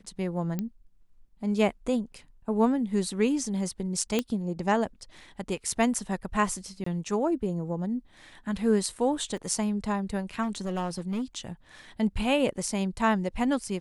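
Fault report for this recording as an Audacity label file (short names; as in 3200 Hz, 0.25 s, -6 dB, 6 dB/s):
0.590000	0.590000	pop -18 dBFS
4.190000	4.190000	pop -12 dBFS
6.840000	6.860000	gap 24 ms
9.370000	9.370000	gap 3.4 ms
10.420000	11.220000	clipped -26 dBFS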